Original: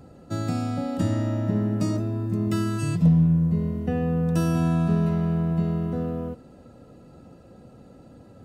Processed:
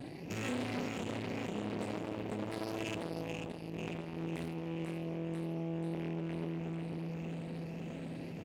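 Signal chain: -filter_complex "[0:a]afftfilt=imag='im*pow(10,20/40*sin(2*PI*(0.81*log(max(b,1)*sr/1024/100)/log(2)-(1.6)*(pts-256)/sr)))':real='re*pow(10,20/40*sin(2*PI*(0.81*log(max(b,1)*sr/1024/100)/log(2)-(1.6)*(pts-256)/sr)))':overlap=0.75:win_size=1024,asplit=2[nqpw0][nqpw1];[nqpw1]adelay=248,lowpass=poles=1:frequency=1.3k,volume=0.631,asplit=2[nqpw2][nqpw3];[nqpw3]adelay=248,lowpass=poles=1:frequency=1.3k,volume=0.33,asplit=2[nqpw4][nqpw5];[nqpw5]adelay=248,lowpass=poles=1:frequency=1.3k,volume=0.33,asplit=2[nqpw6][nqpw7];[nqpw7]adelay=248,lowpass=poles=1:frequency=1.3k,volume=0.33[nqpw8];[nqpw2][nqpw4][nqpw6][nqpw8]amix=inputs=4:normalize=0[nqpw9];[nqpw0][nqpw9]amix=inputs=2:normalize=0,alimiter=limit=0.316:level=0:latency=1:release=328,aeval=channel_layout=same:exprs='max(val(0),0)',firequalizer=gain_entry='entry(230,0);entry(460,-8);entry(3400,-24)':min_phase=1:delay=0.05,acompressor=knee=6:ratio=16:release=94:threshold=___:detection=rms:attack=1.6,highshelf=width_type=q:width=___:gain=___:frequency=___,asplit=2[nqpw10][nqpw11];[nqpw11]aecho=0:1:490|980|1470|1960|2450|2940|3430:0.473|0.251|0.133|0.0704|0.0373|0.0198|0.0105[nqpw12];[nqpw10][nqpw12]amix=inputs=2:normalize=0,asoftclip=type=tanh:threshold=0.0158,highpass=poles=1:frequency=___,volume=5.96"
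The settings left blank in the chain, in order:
0.0501, 3, 12.5, 1.8k, 560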